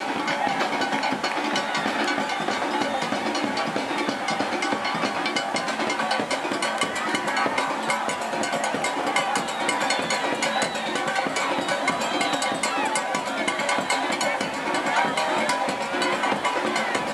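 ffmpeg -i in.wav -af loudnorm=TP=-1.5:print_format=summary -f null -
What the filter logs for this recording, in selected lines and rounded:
Input Integrated:    -24.1 LUFS
Input True Peak:      -6.8 dBTP
Input LRA:             1.1 LU
Input Threshold:     -34.1 LUFS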